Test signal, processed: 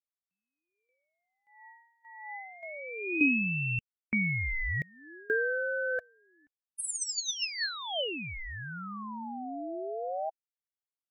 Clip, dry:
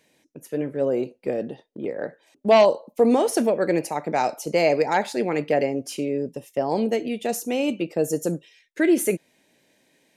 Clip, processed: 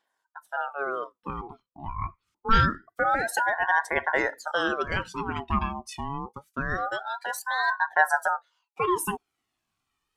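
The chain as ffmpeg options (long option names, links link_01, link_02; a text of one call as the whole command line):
ffmpeg -i in.wav -af "aphaser=in_gain=1:out_gain=1:delay=1.7:decay=0.57:speed=0.25:type=triangular,afftdn=noise_reduction=13:noise_floor=-32,aeval=exprs='val(0)*sin(2*PI*890*n/s+890*0.45/0.26*sin(2*PI*0.26*n/s))':channel_layout=same,volume=-2.5dB" out.wav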